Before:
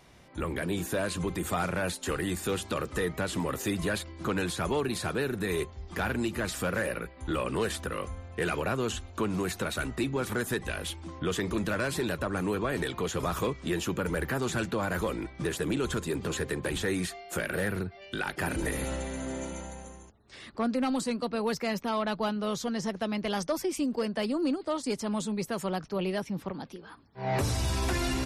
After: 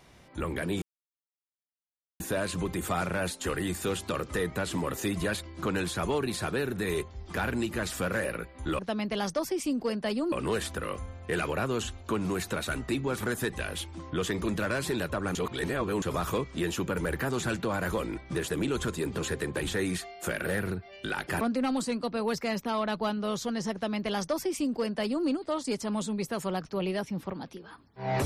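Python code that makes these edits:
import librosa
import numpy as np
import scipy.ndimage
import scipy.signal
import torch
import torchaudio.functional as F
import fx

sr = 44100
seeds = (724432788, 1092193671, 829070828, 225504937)

y = fx.edit(x, sr, fx.insert_silence(at_s=0.82, length_s=1.38),
    fx.reverse_span(start_s=12.44, length_s=0.67),
    fx.cut(start_s=18.5, length_s=2.1),
    fx.duplicate(start_s=22.92, length_s=1.53, to_s=7.41), tone=tone)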